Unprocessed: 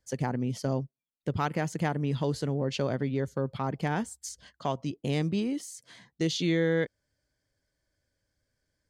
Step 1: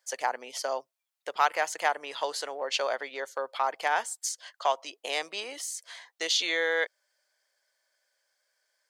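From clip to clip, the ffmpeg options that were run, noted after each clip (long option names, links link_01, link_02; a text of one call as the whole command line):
ffmpeg -i in.wav -af "highpass=frequency=640:width=0.5412,highpass=frequency=640:width=1.3066,volume=7.5dB" out.wav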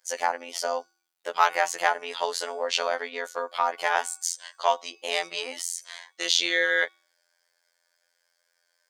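ffmpeg -i in.wav -af "bandreject=frequency=371.1:width_type=h:width=4,bandreject=frequency=742.2:width_type=h:width=4,bandreject=frequency=1113.3:width_type=h:width=4,bandreject=frequency=1484.4:width_type=h:width=4,bandreject=frequency=1855.5:width_type=h:width=4,bandreject=frequency=2226.6:width_type=h:width=4,bandreject=frequency=2597.7:width_type=h:width=4,bandreject=frequency=2968.8:width_type=h:width=4,bandreject=frequency=3339.9:width_type=h:width=4,bandreject=frequency=3711:width_type=h:width=4,bandreject=frequency=4082.1:width_type=h:width=4,bandreject=frequency=4453.2:width_type=h:width=4,bandreject=frequency=4824.3:width_type=h:width=4,bandreject=frequency=5195.4:width_type=h:width=4,bandreject=frequency=5566.5:width_type=h:width=4,bandreject=frequency=5937.6:width_type=h:width=4,bandreject=frequency=6308.7:width_type=h:width=4,bandreject=frequency=6679.8:width_type=h:width=4,bandreject=frequency=7050.9:width_type=h:width=4,bandreject=frequency=7422:width_type=h:width=4,bandreject=frequency=7793.1:width_type=h:width=4,bandreject=frequency=8164.2:width_type=h:width=4,bandreject=frequency=8535.3:width_type=h:width=4,afftfilt=real='hypot(re,im)*cos(PI*b)':imag='0':win_size=2048:overlap=0.75,volume=7dB" out.wav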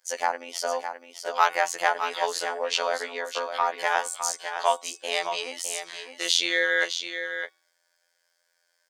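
ffmpeg -i in.wav -af "aecho=1:1:610:0.376" out.wav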